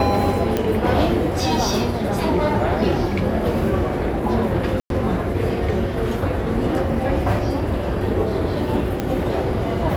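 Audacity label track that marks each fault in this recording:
0.570000	0.570000	click −7 dBFS
4.800000	4.900000	drop-out 102 ms
9.000000	9.000000	click −9 dBFS

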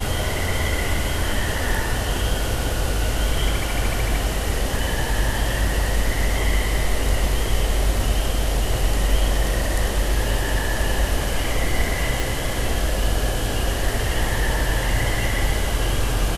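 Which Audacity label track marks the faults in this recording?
12.200000	12.200000	click

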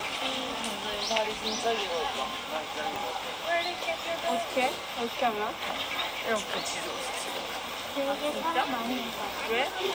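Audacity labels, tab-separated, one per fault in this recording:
2.960000	2.960000	click

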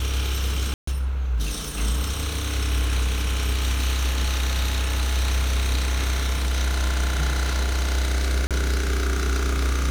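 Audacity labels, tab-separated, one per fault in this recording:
0.740000	0.870000	drop-out 134 ms
8.470000	8.510000	drop-out 37 ms

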